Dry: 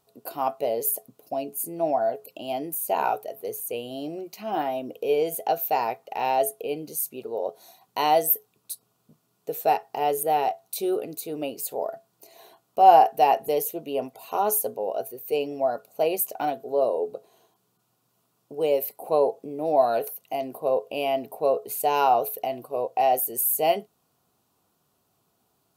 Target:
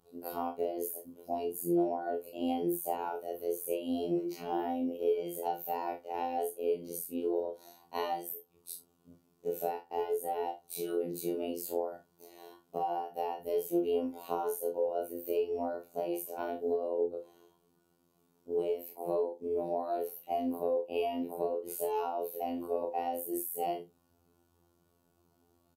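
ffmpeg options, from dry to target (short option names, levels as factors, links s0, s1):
-filter_complex "[0:a]afftfilt=real='re':imag='-im':win_size=2048:overlap=0.75,acompressor=threshold=0.02:ratio=16,afftfilt=real='hypot(re,im)*cos(PI*b)':imag='0':win_size=2048:overlap=0.75,tiltshelf=f=670:g=6.5,asplit=2[s0][s1];[s1]adelay=43,volume=0.335[s2];[s0][s2]amix=inputs=2:normalize=0,asplit=2[s3][s4];[s4]aecho=0:1:26|37:0.282|0.251[s5];[s3][s5]amix=inputs=2:normalize=0,volume=2.11"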